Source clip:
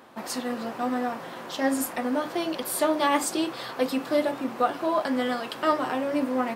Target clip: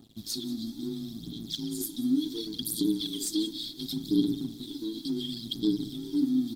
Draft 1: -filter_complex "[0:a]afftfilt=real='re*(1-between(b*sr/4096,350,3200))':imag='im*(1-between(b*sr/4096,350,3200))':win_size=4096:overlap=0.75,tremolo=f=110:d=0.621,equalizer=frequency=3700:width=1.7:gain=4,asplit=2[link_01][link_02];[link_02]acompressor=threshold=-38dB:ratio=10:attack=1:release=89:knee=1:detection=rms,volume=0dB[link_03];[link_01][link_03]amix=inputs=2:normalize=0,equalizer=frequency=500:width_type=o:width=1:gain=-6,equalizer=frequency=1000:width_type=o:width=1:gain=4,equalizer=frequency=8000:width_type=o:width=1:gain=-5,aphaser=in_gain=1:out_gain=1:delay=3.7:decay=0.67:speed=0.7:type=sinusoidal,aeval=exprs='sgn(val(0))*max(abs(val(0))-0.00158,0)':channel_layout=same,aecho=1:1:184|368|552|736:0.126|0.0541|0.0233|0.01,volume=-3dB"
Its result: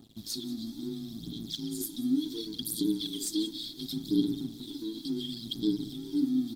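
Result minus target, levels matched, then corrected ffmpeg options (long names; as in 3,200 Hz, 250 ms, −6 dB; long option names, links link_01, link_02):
downward compressor: peak gain reduction +6.5 dB
-filter_complex "[0:a]afftfilt=real='re*(1-between(b*sr/4096,350,3200))':imag='im*(1-between(b*sr/4096,350,3200))':win_size=4096:overlap=0.75,tremolo=f=110:d=0.621,equalizer=frequency=3700:width=1.7:gain=4,asplit=2[link_01][link_02];[link_02]acompressor=threshold=-31dB:ratio=10:attack=1:release=89:knee=1:detection=rms,volume=0dB[link_03];[link_01][link_03]amix=inputs=2:normalize=0,equalizer=frequency=500:width_type=o:width=1:gain=-6,equalizer=frequency=1000:width_type=o:width=1:gain=4,equalizer=frequency=8000:width_type=o:width=1:gain=-5,aphaser=in_gain=1:out_gain=1:delay=3.7:decay=0.67:speed=0.7:type=sinusoidal,aeval=exprs='sgn(val(0))*max(abs(val(0))-0.00158,0)':channel_layout=same,aecho=1:1:184|368|552|736:0.126|0.0541|0.0233|0.01,volume=-3dB"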